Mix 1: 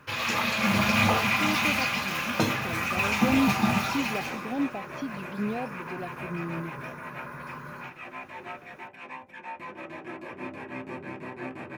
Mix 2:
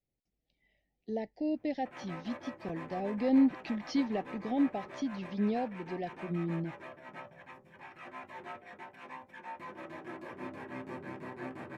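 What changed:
first sound: muted
second sound −4.5 dB
master: add parametric band 2,500 Hz −8.5 dB 0.27 octaves

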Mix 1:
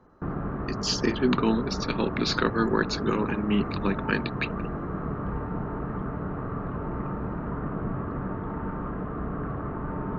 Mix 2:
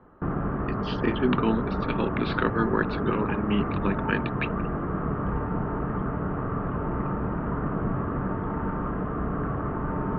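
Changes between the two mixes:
background +4.0 dB
master: add Chebyshev low-pass filter 3,300 Hz, order 4

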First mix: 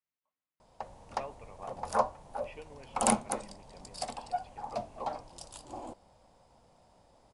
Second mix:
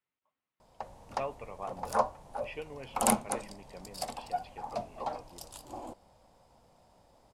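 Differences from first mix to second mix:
speech +7.0 dB
master: remove linear-phase brick-wall low-pass 11,000 Hz

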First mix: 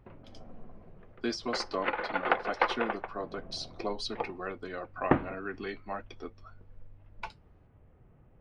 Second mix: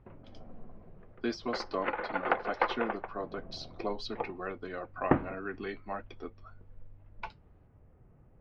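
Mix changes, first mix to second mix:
speech: add high-frequency loss of the air 140 metres
background: add high-frequency loss of the air 350 metres

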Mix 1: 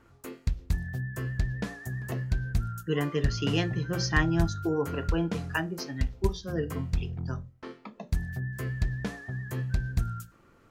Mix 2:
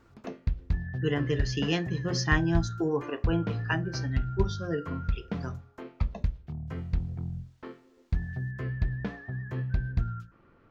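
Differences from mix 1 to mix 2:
speech: entry −1.85 s
background: add high-frequency loss of the air 250 metres

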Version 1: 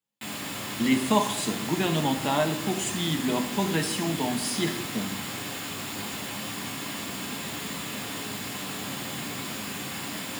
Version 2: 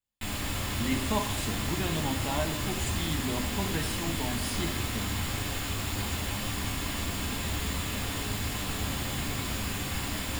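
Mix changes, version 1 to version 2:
speech −7.5 dB
master: remove high-pass filter 140 Hz 24 dB per octave

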